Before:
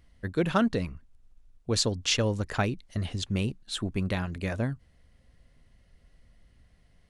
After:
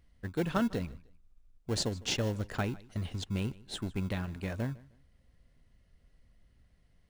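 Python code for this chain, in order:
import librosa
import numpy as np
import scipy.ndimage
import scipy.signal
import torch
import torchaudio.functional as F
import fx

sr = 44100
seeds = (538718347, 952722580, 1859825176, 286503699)

p1 = fx.sample_hold(x, sr, seeds[0], rate_hz=1200.0, jitter_pct=0)
p2 = x + (p1 * 10.0 ** (-9.5 / 20.0))
p3 = fx.echo_feedback(p2, sr, ms=154, feedback_pct=28, wet_db=-22)
y = p3 * 10.0 ** (-7.0 / 20.0)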